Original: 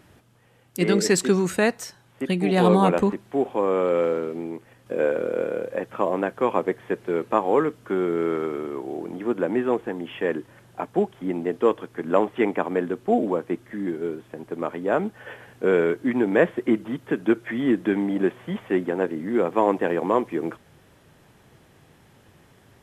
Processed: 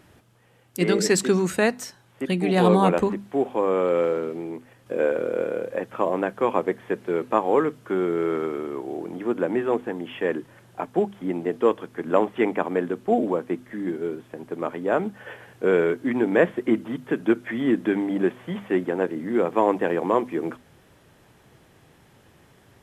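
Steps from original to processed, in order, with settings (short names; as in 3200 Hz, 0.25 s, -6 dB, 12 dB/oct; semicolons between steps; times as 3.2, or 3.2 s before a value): notches 50/100/150/200/250 Hz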